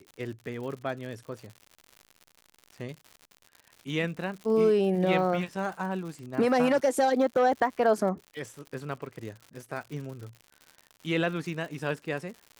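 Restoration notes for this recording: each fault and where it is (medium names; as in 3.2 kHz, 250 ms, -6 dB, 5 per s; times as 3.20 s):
crackle 120 per s -38 dBFS
6.79 s: dropout 2.3 ms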